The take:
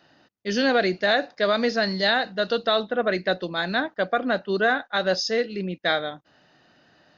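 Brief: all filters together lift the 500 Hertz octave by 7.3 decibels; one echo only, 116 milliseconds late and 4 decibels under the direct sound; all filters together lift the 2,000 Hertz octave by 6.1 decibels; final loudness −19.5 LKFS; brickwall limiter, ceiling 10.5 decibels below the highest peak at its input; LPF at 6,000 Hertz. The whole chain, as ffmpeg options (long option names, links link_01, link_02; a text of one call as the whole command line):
ffmpeg -i in.wav -af "lowpass=6000,equalizer=frequency=500:width_type=o:gain=8.5,equalizer=frequency=2000:width_type=o:gain=7.5,alimiter=limit=-14dB:level=0:latency=1,aecho=1:1:116:0.631,volume=3dB" out.wav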